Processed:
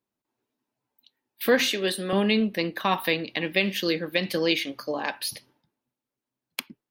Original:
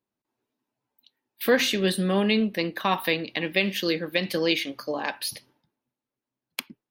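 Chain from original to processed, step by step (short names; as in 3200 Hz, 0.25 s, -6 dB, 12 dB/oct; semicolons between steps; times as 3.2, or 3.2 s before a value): 1.69–2.13 HPF 320 Hz 12 dB/oct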